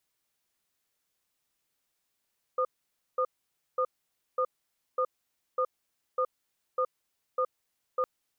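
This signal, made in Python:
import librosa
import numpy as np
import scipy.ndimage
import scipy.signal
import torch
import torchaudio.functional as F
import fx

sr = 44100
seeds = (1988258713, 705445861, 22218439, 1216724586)

y = fx.cadence(sr, length_s=5.46, low_hz=512.0, high_hz=1220.0, on_s=0.07, off_s=0.53, level_db=-27.0)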